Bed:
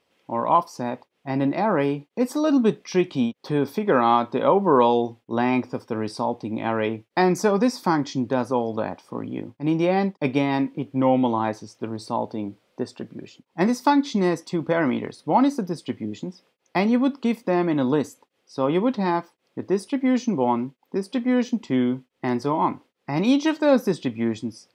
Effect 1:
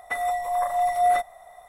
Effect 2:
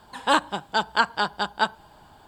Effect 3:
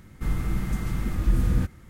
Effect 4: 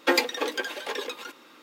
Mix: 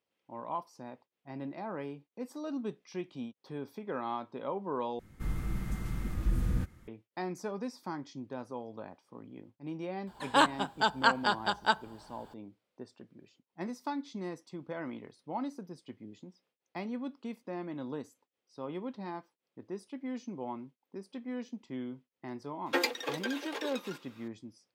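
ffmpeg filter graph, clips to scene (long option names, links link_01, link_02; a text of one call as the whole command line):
ffmpeg -i bed.wav -i cue0.wav -i cue1.wav -i cue2.wav -i cue3.wav -filter_complex "[0:a]volume=-18dB,asplit=2[link_01][link_02];[link_01]atrim=end=4.994[link_03];[3:a]atrim=end=1.89,asetpts=PTS-STARTPTS,volume=-8dB[link_04];[link_02]atrim=start=6.876[link_05];[2:a]atrim=end=2.27,asetpts=PTS-STARTPTS,volume=-4.5dB,afade=type=in:duration=0.004:curve=hsin,afade=type=out:start_time=2.266:duration=0.004:curve=hsin,adelay=10070[link_06];[4:a]atrim=end=1.62,asetpts=PTS-STARTPTS,volume=-7.5dB,afade=type=in:duration=0.004:curve=hsin,afade=type=out:start_time=1.616:duration=0.004:curve=hsin,adelay=22660[link_07];[link_03][link_04]acrossfade=duration=0.004:curve1=hsin:curve2=hsin[link_08];[link_08][link_05]acrossfade=duration=0.004:curve1=hsin:curve2=hsin[link_09];[link_09][link_06][link_07]amix=inputs=3:normalize=0" out.wav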